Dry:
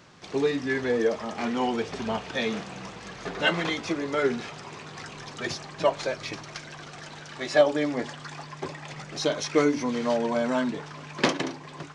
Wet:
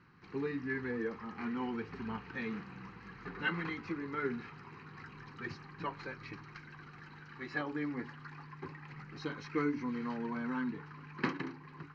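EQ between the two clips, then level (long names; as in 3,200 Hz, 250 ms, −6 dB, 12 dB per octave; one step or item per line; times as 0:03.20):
transistor ladder low-pass 4,100 Hz, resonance 75%
high-shelf EQ 2,500 Hz −11.5 dB
phaser with its sweep stopped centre 1,500 Hz, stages 4
+6.0 dB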